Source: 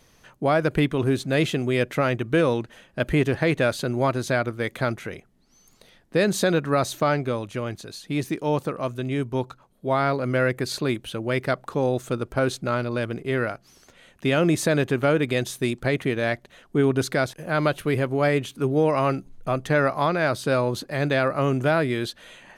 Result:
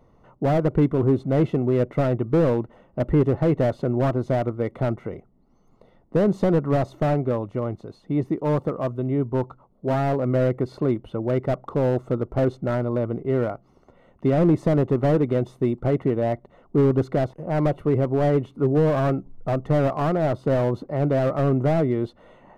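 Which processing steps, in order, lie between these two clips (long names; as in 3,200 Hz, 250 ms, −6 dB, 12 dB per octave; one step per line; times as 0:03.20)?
Savitzky-Golay smoothing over 65 samples
slew-rate limiting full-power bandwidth 49 Hz
level +3 dB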